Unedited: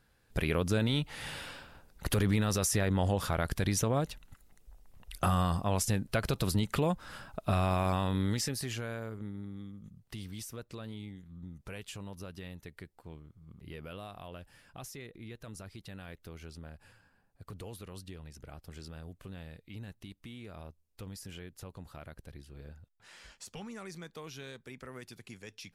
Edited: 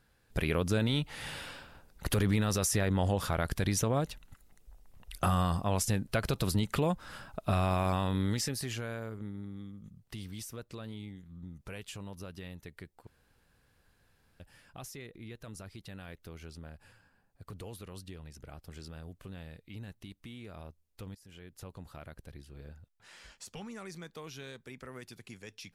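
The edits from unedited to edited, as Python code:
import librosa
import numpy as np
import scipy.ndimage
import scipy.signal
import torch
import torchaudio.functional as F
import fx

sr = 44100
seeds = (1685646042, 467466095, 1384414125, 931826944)

y = fx.edit(x, sr, fx.room_tone_fill(start_s=13.07, length_s=1.33),
    fx.fade_in_from(start_s=21.15, length_s=0.5, floor_db=-19.0), tone=tone)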